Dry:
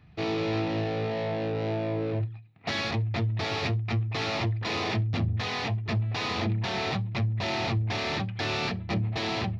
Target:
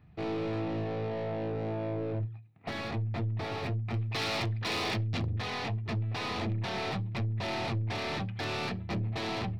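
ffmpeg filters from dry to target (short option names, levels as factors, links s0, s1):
-af "aeval=exprs='0.133*(cos(1*acos(clip(val(0)/0.133,-1,1)))-cos(1*PI/2))+0.0168*(cos(3*acos(clip(val(0)/0.133,-1,1)))-cos(3*PI/2))+0.0188*(cos(5*acos(clip(val(0)/0.133,-1,1)))-cos(5*PI/2))+0.00531*(cos(6*acos(clip(val(0)/0.133,-1,1)))-cos(6*PI/2))+0.00237*(cos(7*acos(clip(val(0)/0.133,-1,1)))-cos(7*PI/2))':c=same,asetnsamples=n=441:p=0,asendcmd='3.94 equalizer g 4;5.32 equalizer g -2.5',equalizer=f=6300:w=0.33:g=-9,aeval=exprs='0.0841*(abs(mod(val(0)/0.0841+3,4)-2)-1)':c=same,volume=0.631"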